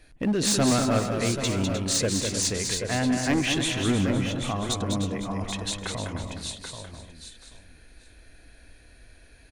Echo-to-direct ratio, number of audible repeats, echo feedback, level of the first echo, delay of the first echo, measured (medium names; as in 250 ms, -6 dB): -2.0 dB, 7, no regular repeats, -5.5 dB, 202 ms